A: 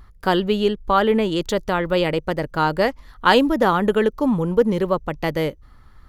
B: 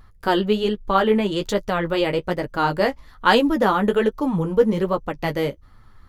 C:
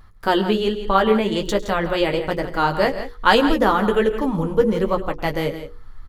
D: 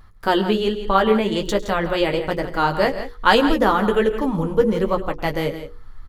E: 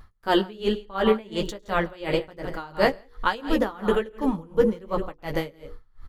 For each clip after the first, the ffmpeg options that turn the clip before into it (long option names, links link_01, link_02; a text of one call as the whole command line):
ffmpeg -i in.wav -af "flanger=delay=9:depth=6:regen=-21:speed=1.2:shape=sinusoidal,volume=2.5dB" out.wav
ffmpeg -i in.wav -af "bandreject=frequency=60:width_type=h:width=6,bandreject=frequency=120:width_type=h:width=6,bandreject=frequency=180:width_type=h:width=6,bandreject=frequency=240:width_type=h:width=6,bandreject=frequency=300:width_type=h:width=6,bandreject=frequency=360:width_type=h:width=6,bandreject=frequency=420:width_type=h:width=6,bandreject=frequency=480:width_type=h:width=6,asubboost=boost=4:cutoff=53,aecho=1:1:104|136|167:0.112|0.112|0.266,volume=1.5dB" out.wav
ffmpeg -i in.wav -af anull out.wav
ffmpeg -i in.wav -af "aeval=exprs='val(0)*pow(10,-24*(0.5-0.5*cos(2*PI*2.8*n/s))/20)':channel_layout=same" out.wav